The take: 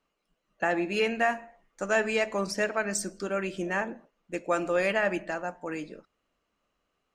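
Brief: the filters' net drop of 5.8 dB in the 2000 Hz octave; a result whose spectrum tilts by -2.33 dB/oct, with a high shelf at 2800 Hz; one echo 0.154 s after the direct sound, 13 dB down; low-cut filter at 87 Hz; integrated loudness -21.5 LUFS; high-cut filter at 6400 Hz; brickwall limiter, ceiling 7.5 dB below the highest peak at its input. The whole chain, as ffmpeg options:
-af "highpass=87,lowpass=6.4k,equalizer=f=2k:t=o:g=-4,highshelf=f=2.8k:g=-8.5,alimiter=limit=-23dB:level=0:latency=1,aecho=1:1:154:0.224,volume=12.5dB"

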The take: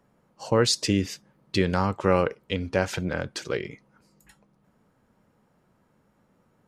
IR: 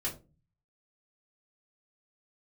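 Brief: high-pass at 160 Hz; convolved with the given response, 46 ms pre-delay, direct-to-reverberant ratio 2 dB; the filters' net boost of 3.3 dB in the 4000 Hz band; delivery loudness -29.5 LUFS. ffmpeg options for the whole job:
-filter_complex "[0:a]highpass=160,equalizer=f=4k:t=o:g=4,asplit=2[a][b];[1:a]atrim=start_sample=2205,adelay=46[c];[b][c]afir=irnorm=-1:irlink=0,volume=-5dB[d];[a][d]amix=inputs=2:normalize=0,volume=-6dB"

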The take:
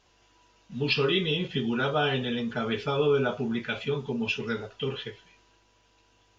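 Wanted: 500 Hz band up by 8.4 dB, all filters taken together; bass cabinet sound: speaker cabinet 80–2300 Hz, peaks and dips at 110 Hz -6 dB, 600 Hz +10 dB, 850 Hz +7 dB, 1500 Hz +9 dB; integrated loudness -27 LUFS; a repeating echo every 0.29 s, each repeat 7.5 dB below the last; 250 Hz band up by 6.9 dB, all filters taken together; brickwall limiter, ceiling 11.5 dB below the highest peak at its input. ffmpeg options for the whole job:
-af "equalizer=f=250:t=o:g=7,equalizer=f=500:t=o:g=4,alimiter=limit=-21dB:level=0:latency=1,highpass=f=80:w=0.5412,highpass=f=80:w=1.3066,equalizer=f=110:t=q:w=4:g=-6,equalizer=f=600:t=q:w=4:g=10,equalizer=f=850:t=q:w=4:g=7,equalizer=f=1.5k:t=q:w=4:g=9,lowpass=f=2.3k:w=0.5412,lowpass=f=2.3k:w=1.3066,aecho=1:1:290|580|870|1160|1450:0.422|0.177|0.0744|0.0312|0.0131"

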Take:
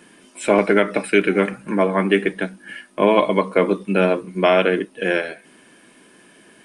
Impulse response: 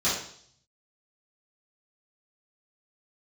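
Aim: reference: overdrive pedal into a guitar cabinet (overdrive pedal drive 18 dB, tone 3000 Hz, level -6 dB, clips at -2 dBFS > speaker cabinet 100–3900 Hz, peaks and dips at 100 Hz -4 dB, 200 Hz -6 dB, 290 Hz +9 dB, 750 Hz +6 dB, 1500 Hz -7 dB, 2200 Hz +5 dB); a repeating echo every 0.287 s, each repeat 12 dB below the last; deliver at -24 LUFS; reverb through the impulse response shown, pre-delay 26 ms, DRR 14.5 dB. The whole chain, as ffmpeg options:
-filter_complex "[0:a]aecho=1:1:287|574|861:0.251|0.0628|0.0157,asplit=2[a][b];[1:a]atrim=start_sample=2205,adelay=26[c];[b][c]afir=irnorm=-1:irlink=0,volume=-27dB[d];[a][d]amix=inputs=2:normalize=0,asplit=2[e][f];[f]highpass=f=720:p=1,volume=18dB,asoftclip=type=tanh:threshold=-2dB[g];[e][g]amix=inputs=2:normalize=0,lowpass=f=3k:p=1,volume=-6dB,highpass=100,equalizer=f=100:t=q:w=4:g=-4,equalizer=f=200:t=q:w=4:g=-6,equalizer=f=290:t=q:w=4:g=9,equalizer=f=750:t=q:w=4:g=6,equalizer=f=1.5k:t=q:w=4:g=-7,equalizer=f=2.2k:t=q:w=4:g=5,lowpass=f=3.9k:w=0.5412,lowpass=f=3.9k:w=1.3066,volume=-11.5dB"

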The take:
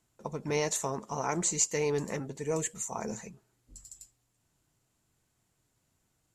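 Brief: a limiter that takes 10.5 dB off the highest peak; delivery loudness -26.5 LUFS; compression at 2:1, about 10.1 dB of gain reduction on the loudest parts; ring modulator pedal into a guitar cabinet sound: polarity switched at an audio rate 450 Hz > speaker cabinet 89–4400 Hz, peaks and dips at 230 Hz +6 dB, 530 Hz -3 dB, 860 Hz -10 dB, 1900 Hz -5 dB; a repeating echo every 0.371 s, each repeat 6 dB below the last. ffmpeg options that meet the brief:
-af "acompressor=threshold=-41dB:ratio=2,alimiter=level_in=8.5dB:limit=-24dB:level=0:latency=1,volume=-8.5dB,aecho=1:1:371|742|1113|1484|1855|2226:0.501|0.251|0.125|0.0626|0.0313|0.0157,aeval=exprs='val(0)*sgn(sin(2*PI*450*n/s))':c=same,highpass=89,equalizer=f=230:t=q:w=4:g=6,equalizer=f=530:t=q:w=4:g=-3,equalizer=f=860:t=q:w=4:g=-10,equalizer=f=1.9k:t=q:w=4:g=-5,lowpass=f=4.4k:w=0.5412,lowpass=f=4.4k:w=1.3066,volume=19.5dB"

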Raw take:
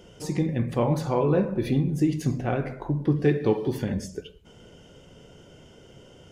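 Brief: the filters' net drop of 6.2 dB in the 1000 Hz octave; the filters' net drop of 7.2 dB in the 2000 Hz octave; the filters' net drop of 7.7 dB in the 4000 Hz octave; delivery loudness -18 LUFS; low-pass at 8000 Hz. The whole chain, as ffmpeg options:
-af "lowpass=8k,equalizer=f=1k:t=o:g=-7,equalizer=f=2k:t=o:g=-5,equalizer=f=4k:t=o:g=-8,volume=8.5dB"

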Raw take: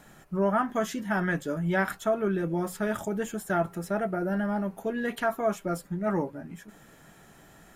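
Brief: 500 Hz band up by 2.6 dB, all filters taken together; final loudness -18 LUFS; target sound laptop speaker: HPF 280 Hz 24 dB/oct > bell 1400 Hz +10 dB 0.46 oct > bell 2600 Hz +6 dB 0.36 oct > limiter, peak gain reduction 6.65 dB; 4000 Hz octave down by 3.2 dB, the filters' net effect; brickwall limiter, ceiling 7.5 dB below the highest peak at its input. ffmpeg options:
-af "equalizer=f=500:t=o:g=3.5,equalizer=f=4k:t=o:g=-7.5,alimiter=limit=-21.5dB:level=0:latency=1,highpass=f=280:w=0.5412,highpass=f=280:w=1.3066,equalizer=f=1.4k:t=o:w=0.46:g=10,equalizer=f=2.6k:t=o:w=0.36:g=6,volume=14.5dB,alimiter=limit=-7dB:level=0:latency=1"

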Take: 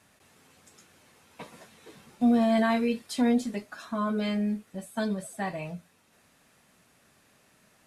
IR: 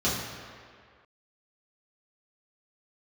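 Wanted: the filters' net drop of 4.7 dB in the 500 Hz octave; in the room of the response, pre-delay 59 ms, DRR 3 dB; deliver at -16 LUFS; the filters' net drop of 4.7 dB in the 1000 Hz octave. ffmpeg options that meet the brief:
-filter_complex "[0:a]equalizer=f=500:t=o:g=-4.5,equalizer=f=1k:t=o:g=-4.5,asplit=2[a][b];[1:a]atrim=start_sample=2205,adelay=59[c];[b][c]afir=irnorm=-1:irlink=0,volume=-15.5dB[d];[a][d]amix=inputs=2:normalize=0,volume=10dB"

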